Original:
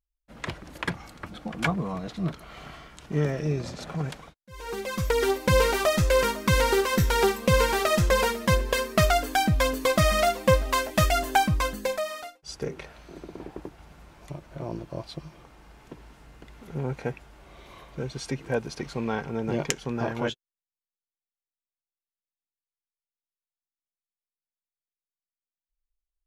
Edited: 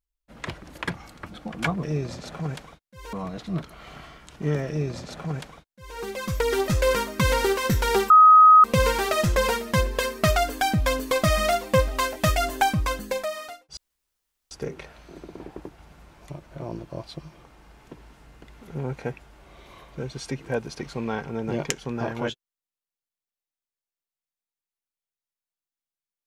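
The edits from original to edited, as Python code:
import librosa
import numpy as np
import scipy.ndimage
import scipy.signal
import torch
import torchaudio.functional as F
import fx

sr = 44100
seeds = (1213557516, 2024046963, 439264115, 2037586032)

y = fx.edit(x, sr, fx.duplicate(start_s=3.38, length_s=1.3, to_s=1.83),
    fx.cut(start_s=5.38, length_s=0.58),
    fx.insert_tone(at_s=7.38, length_s=0.54, hz=1260.0, db=-8.5),
    fx.insert_room_tone(at_s=12.51, length_s=0.74), tone=tone)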